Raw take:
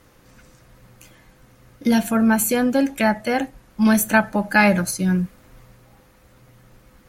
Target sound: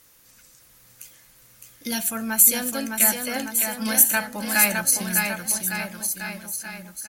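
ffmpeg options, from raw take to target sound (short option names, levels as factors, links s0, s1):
-af "aecho=1:1:610|1159|1653|2098|2498:0.631|0.398|0.251|0.158|0.1,crystalizer=i=9.5:c=0,volume=0.2"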